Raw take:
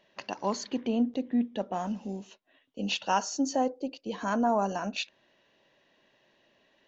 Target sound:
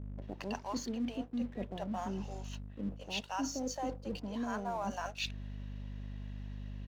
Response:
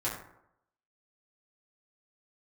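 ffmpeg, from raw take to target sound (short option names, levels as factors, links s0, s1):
-filter_complex "[0:a]acrossover=split=540[s0][s1];[s1]adelay=220[s2];[s0][s2]amix=inputs=2:normalize=0,aeval=exprs='val(0)+0.00631*(sin(2*PI*50*n/s)+sin(2*PI*2*50*n/s)/2+sin(2*PI*3*50*n/s)/3+sin(2*PI*4*50*n/s)/4+sin(2*PI*5*50*n/s)/5)':c=same,areverse,acompressor=threshold=0.01:ratio=4,areverse,aeval=exprs='sgn(val(0))*max(abs(val(0))-0.00106,0)':c=same,volume=1.68"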